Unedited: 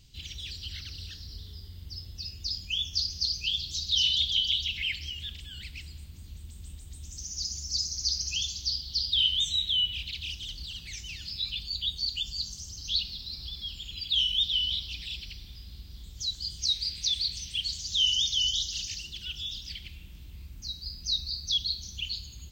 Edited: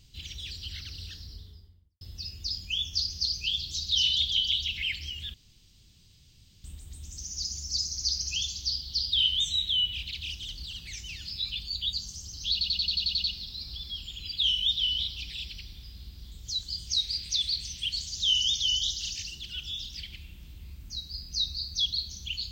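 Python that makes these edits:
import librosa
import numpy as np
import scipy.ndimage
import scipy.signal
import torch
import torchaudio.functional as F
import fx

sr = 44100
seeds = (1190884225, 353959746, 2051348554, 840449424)

y = fx.studio_fade_out(x, sr, start_s=1.12, length_s=0.89)
y = fx.edit(y, sr, fx.room_tone_fill(start_s=5.34, length_s=1.3),
    fx.cut(start_s=11.93, length_s=0.44),
    fx.stutter(start_s=12.96, slice_s=0.09, count=9), tone=tone)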